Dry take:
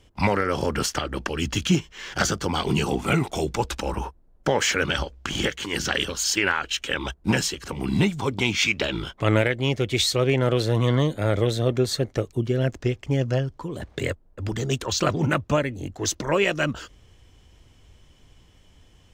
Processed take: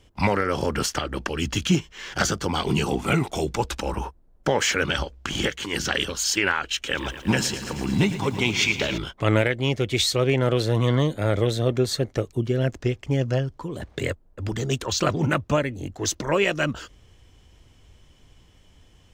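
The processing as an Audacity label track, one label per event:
6.750000	8.980000	lo-fi delay 0.112 s, feedback 80%, word length 8-bit, level -12.5 dB

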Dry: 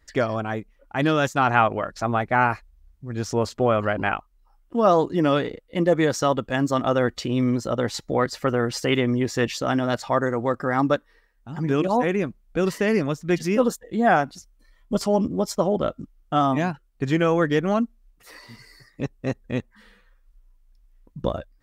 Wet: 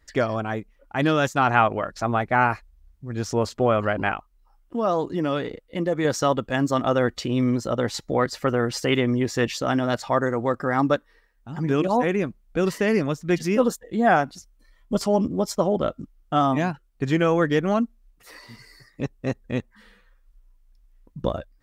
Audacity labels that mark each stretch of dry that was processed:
4.110000	6.050000	compressor 1.5:1, threshold -27 dBFS

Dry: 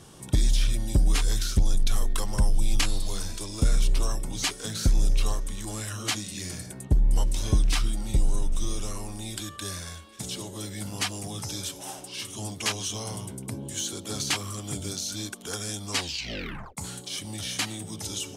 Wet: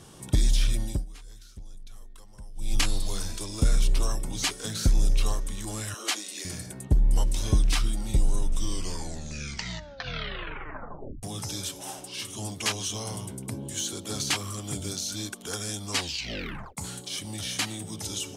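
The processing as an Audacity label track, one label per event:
0.820000	2.790000	dip -22 dB, fades 0.24 s
5.940000	6.450000	HPF 320 Hz 24 dB/oct
8.510000	8.510000	tape stop 2.72 s

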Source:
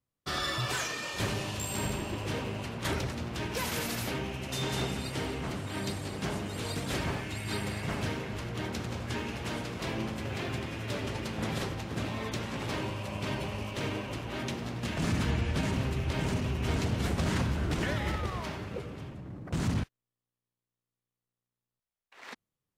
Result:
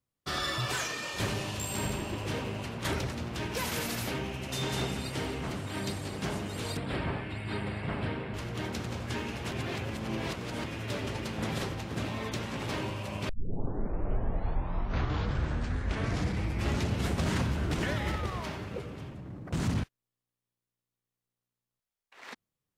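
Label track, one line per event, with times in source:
6.770000	8.340000	running mean over 7 samples
9.510000	10.640000	reverse
13.290000	13.290000	tape start 3.83 s

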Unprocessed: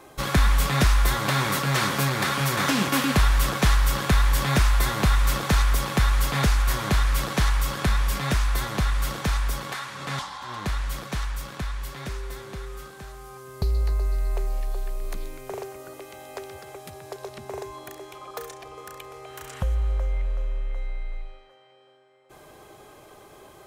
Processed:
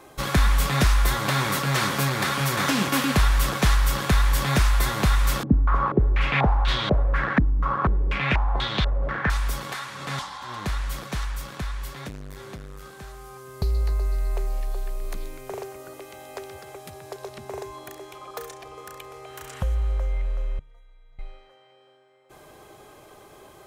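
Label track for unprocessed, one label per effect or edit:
5.430000	9.300000	stepped low-pass 4.1 Hz 270–3600 Hz
11.930000	12.990000	core saturation saturates under 260 Hz
20.590000	21.190000	metallic resonator 140 Hz, decay 0.52 s, inharmonicity 0.03

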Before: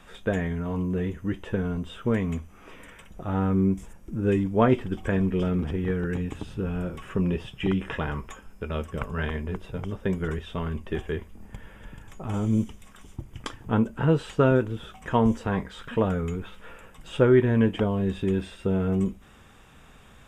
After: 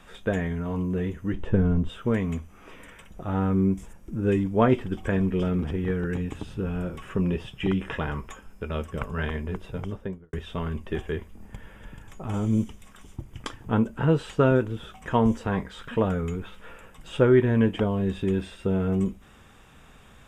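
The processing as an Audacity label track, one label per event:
1.330000	1.890000	tilt -2.5 dB/oct
9.820000	10.330000	studio fade out

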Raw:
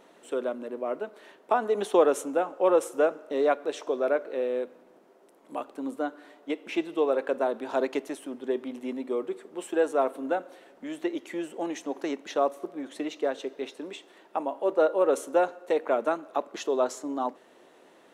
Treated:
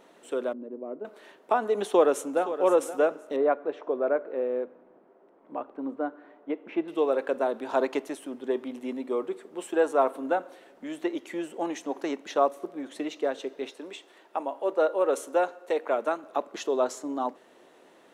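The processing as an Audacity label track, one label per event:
0.530000	1.050000	band-pass 270 Hz, Q 1.2
1.840000	2.450000	echo throw 0.52 s, feedback 20%, level -12.5 dB
3.360000	6.880000	LPF 1600 Hz
7.590000	12.460000	dynamic EQ 1000 Hz, up to +5 dB, over -40 dBFS, Q 1.4
13.710000	16.240000	HPF 330 Hz 6 dB/oct

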